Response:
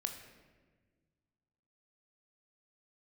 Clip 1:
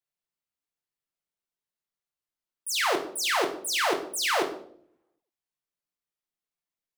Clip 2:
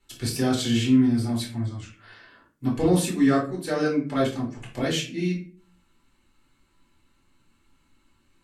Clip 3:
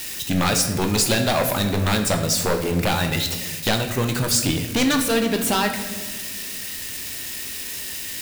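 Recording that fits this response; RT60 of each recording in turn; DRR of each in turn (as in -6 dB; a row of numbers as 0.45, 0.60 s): 3; 0.65, 0.40, 1.5 s; 3.0, -5.5, 4.5 dB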